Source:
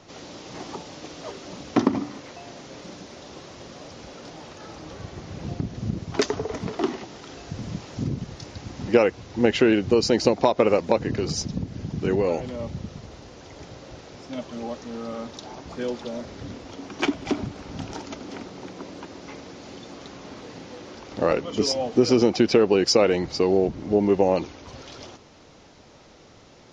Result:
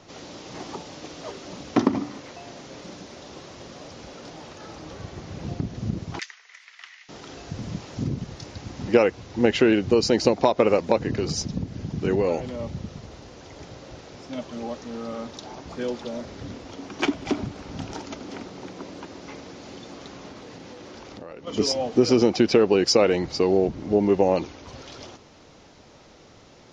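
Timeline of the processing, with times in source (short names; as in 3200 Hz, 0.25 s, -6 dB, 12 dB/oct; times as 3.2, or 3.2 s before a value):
6.19–7.09 ladder high-pass 1700 Hz, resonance 55%
20.27–21.47 compressor, threshold -37 dBFS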